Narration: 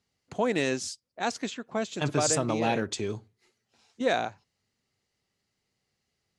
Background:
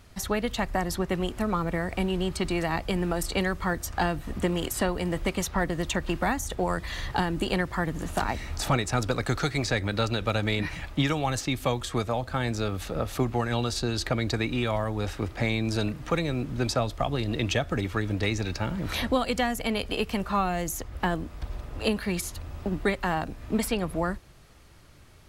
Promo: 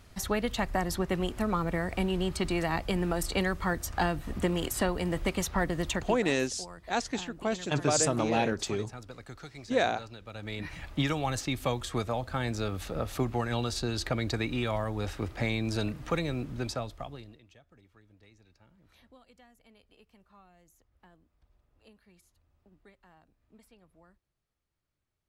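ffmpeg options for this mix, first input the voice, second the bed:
-filter_complex "[0:a]adelay=5700,volume=-0.5dB[a];[1:a]volume=13dB,afade=t=out:st=5.89:d=0.34:silence=0.149624,afade=t=in:st=10.3:d=0.73:silence=0.177828,afade=t=out:st=16.26:d=1.14:silence=0.0354813[b];[a][b]amix=inputs=2:normalize=0"

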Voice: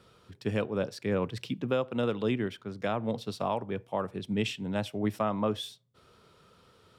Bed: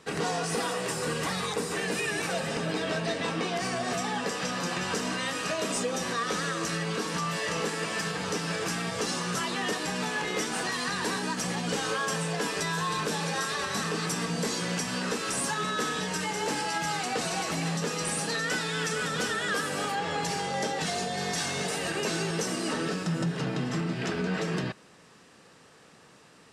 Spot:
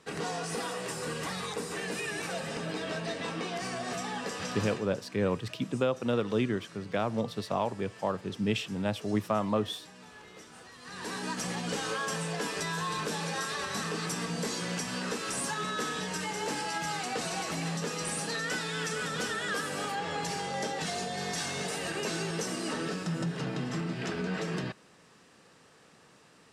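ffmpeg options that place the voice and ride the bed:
-filter_complex "[0:a]adelay=4100,volume=0.5dB[a];[1:a]volume=12dB,afade=t=out:st=4.61:d=0.25:silence=0.16788,afade=t=in:st=10.81:d=0.49:silence=0.141254[b];[a][b]amix=inputs=2:normalize=0"

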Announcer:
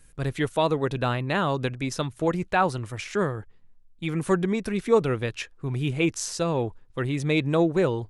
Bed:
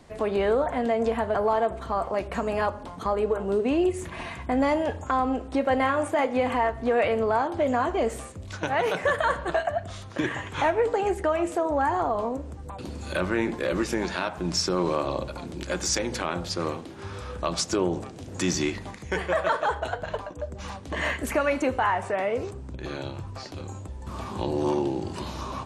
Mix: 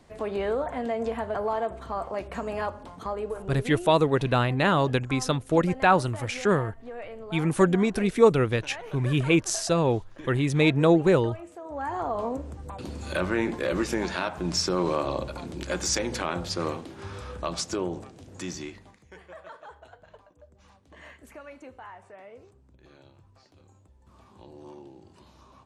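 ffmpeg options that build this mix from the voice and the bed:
-filter_complex "[0:a]adelay=3300,volume=2.5dB[a];[1:a]volume=11.5dB,afade=t=out:st=2.91:d=0.96:silence=0.251189,afade=t=in:st=11.61:d=0.73:silence=0.158489,afade=t=out:st=16.79:d=2.33:silence=0.1[b];[a][b]amix=inputs=2:normalize=0"

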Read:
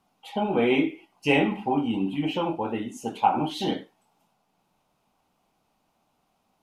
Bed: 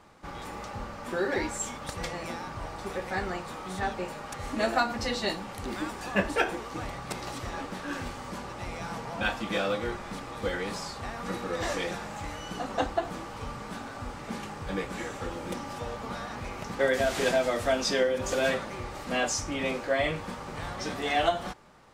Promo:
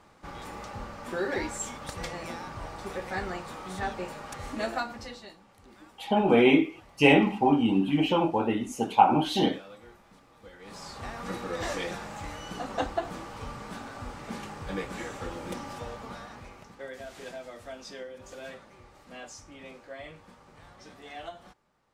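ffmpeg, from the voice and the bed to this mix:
-filter_complex "[0:a]adelay=5750,volume=2.5dB[a];[1:a]volume=16dB,afade=t=out:st=4.37:d=0.92:silence=0.133352,afade=t=in:st=10.59:d=0.45:silence=0.133352,afade=t=out:st=15.67:d=1.09:silence=0.188365[b];[a][b]amix=inputs=2:normalize=0"

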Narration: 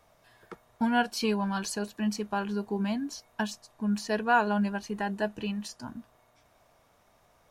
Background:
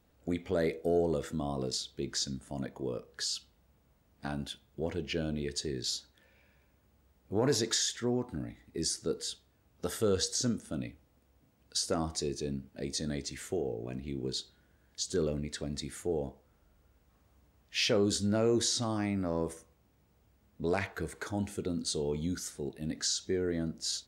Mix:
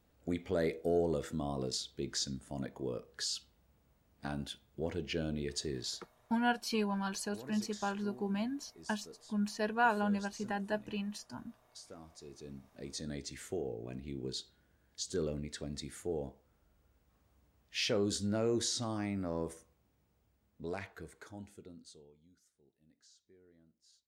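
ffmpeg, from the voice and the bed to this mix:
-filter_complex "[0:a]adelay=5500,volume=-5.5dB[a];[1:a]volume=13dB,afade=t=out:st=5.73:d=0.46:silence=0.133352,afade=t=in:st=12.17:d=1.17:silence=0.16788,afade=t=out:st=19.53:d=2.63:silence=0.0398107[b];[a][b]amix=inputs=2:normalize=0"

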